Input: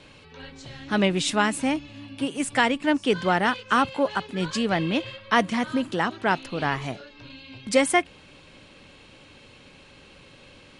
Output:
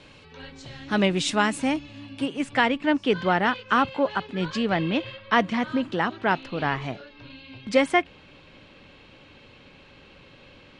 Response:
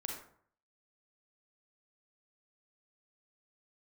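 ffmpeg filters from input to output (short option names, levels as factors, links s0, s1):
-af "asetnsamples=n=441:p=0,asendcmd='2.26 lowpass f 4100',lowpass=8400"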